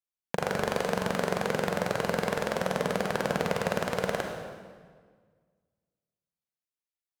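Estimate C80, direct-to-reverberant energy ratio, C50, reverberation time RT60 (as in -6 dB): 4.5 dB, 2.0 dB, 3.0 dB, 1.7 s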